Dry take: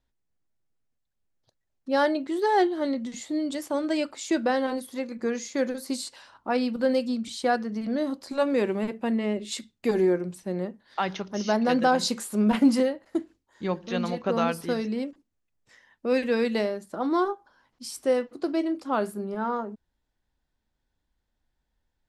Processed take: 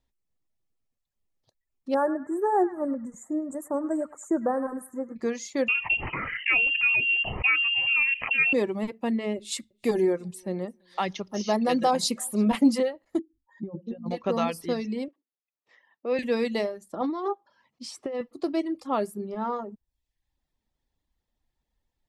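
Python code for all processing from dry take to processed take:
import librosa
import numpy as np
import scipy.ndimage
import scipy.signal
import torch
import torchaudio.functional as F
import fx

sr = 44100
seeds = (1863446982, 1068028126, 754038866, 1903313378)

y = fx.chain(x, sr, fx.ellip_bandstop(low_hz=1500.0, high_hz=7600.0, order=3, stop_db=40),
    fx.echo_banded(ms=103, feedback_pct=55, hz=2100.0, wet_db=-4.5), at=(1.94, 5.16))
y = fx.chain(y, sr, fx.freq_invert(carrier_hz=3000),
    fx.env_flatten(amount_pct=70), at=(5.68, 8.53))
y = fx.chain(y, sr, fx.peak_eq(hz=10000.0, db=7.0, octaves=0.6),
    fx.echo_feedback(ms=335, feedback_pct=27, wet_db=-23.5), at=(9.37, 12.61))
y = fx.chain(y, sr, fx.spec_expand(power=2.3),
    fx.over_compress(threshold_db=-32.0, ratio=-0.5), at=(13.19, 14.11))
y = fx.chain(y, sr, fx.highpass(hz=360.0, slope=12),
    fx.air_absorb(metres=210.0), at=(15.08, 16.19))
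y = fx.chain(y, sr, fx.highpass(hz=170.0, slope=12),
    fx.over_compress(threshold_db=-28.0, ratio=-1.0),
    fx.air_absorb(metres=90.0), at=(17.01, 18.21))
y = fx.dereverb_blind(y, sr, rt60_s=0.66)
y = fx.notch(y, sr, hz=1500.0, q=5.7)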